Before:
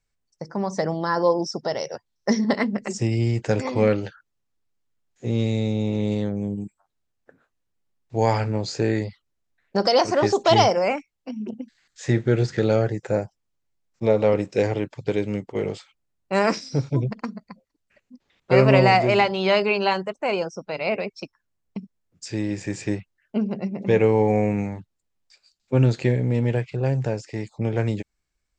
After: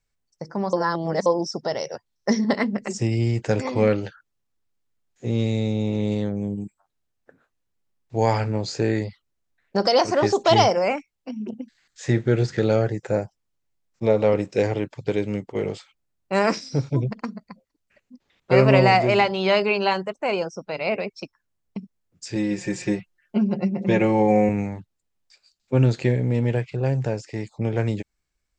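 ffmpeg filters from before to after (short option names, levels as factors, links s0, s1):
-filter_complex "[0:a]asettb=1/sr,asplit=3[s0][s1][s2];[s0]atrim=end=22.354[s3];[s1]atrim=start=22.35:end=24.49,asetpts=PTS-STARTPTS,afade=t=in:d=0.004:c=qsin,afade=t=out:st=2.136:d=0.004:c=qsin,aecho=1:1:5.6:0.83,atrim=end_sample=94374[s4];[s2]atrim=start=24.486[s5];[s3][s4]acrossfade=d=0.004:c1=hsin:c2=qsin[s6];[s6][s5]acrossfade=d=0.004:c1=qsin:c2=hsin,asplit=3[s7][s8][s9];[s7]atrim=end=0.732[s10];[s8]atrim=start=0.728:end=1.262,asetpts=PTS-STARTPTS,areverse[s11];[s9]atrim=start=1.258[s12];[s10][s11]acrossfade=d=0.004:c1=hsin:c2=hsin[s13];[s13][s12]acrossfade=d=0.004:c1=hsin:c2=hsin"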